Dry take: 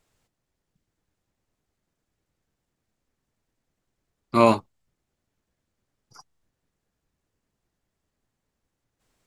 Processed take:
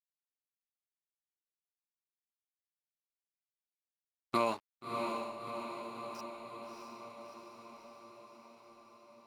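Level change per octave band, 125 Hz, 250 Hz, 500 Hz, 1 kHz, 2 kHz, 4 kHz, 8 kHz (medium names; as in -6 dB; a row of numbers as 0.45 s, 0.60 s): -18.0 dB, -14.0 dB, -12.5 dB, -9.5 dB, -8.5 dB, -6.5 dB, -7.0 dB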